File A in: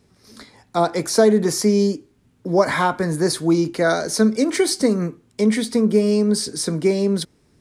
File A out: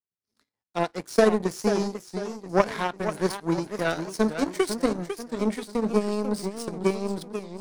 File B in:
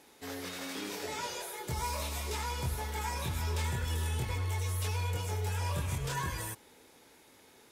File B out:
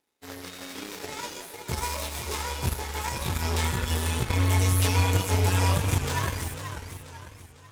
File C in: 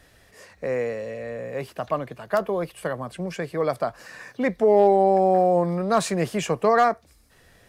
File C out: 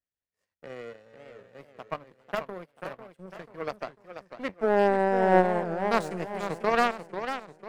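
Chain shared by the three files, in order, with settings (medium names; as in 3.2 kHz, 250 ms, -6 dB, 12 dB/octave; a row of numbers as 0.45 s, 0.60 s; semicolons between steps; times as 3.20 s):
feedback comb 93 Hz, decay 0.27 s, harmonics all, mix 50%; power-law waveshaper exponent 2; modulated delay 493 ms, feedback 43%, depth 207 cents, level -9 dB; normalise loudness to -27 LUFS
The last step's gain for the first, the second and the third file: +5.0 dB, +17.0 dB, +4.0 dB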